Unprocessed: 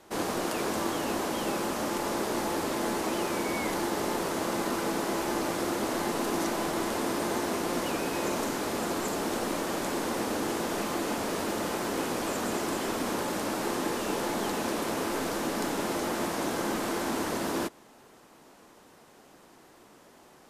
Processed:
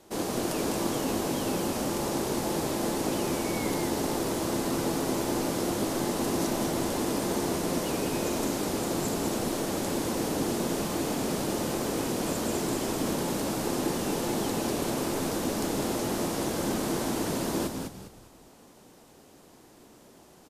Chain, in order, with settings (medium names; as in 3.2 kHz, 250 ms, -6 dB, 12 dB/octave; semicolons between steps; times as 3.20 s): peaking EQ 1.5 kHz -7.5 dB 2.1 oct; frequency-shifting echo 202 ms, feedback 33%, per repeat -74 Hz, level -5 dB; trim +2 dB